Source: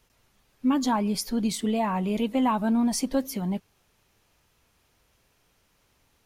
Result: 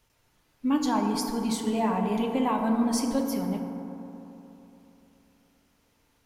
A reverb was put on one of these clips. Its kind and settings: FDN reverb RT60 3.3 s, high-frequency decay 0.3×, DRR 2 dB; trim -3 dB

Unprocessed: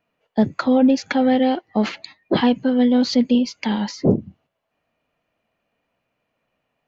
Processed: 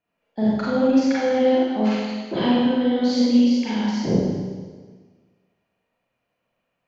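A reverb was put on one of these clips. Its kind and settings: Schroeder reverb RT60 1.5 s, combs from 33 ms, DRR -8.5 dB; trim -11 dB

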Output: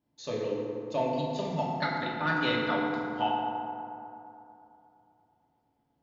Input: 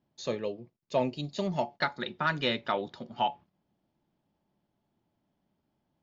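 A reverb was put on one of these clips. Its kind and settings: FDN reverb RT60 2.9 s, high-frequency decay 0.4×, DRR -4.5 dB; trim -5 dB

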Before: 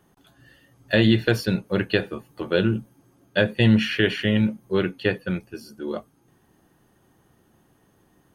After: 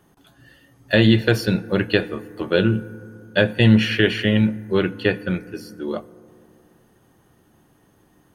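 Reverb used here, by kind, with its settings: FDN reverb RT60 2.5 s, low-frequency decay 1.2×, high-frequency decay 0.3×, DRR 17 dB; trim +3 dB

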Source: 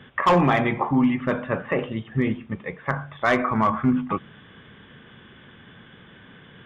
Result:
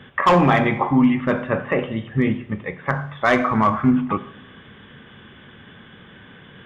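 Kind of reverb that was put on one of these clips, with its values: two-slope reverb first 0.75 s, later 1.9 s, DRR 11 dB; trim +3 dB

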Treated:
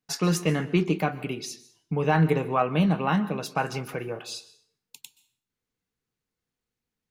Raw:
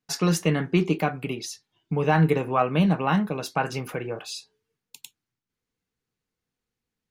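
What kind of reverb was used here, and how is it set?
plate-style reverb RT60 0.52 s, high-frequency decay 0.9×, pre-delay 115 ms, DRR 17 dB; trim -1.5 dB

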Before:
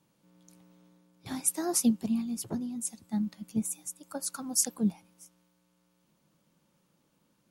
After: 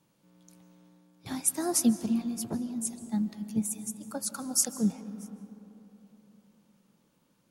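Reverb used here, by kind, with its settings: algorithmic reverb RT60 3.6 s, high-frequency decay 0.4×, pre-delay 110 ms, DRR 12 dB; trim +1 dB

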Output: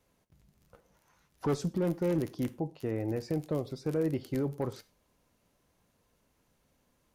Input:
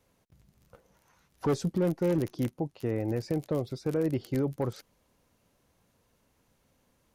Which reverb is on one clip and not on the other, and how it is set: gated-style reverb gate 140 ms falling, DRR 12 dB; trim -2.5 dB

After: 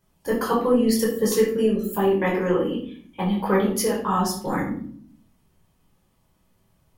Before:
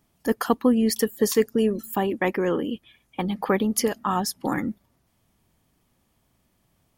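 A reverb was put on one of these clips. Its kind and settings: simulated room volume 620 m³, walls furnished, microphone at 5 m; trim -6 dB

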